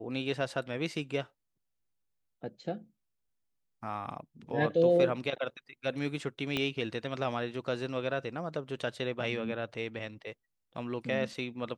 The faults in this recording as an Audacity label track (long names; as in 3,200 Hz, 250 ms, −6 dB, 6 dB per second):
6.570000	6.570000	click −17 dBFS